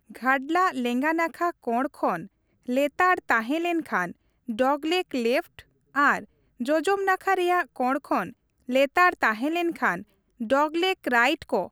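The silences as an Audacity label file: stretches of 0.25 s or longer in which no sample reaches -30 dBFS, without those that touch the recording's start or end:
2.200000	2.690000	silence
4.110000	4.490000	silence
5.590000	5.960000	silence
6.190000	6.610000	silence
8.290000	8.690000	silence
10.000000	10.410000	silence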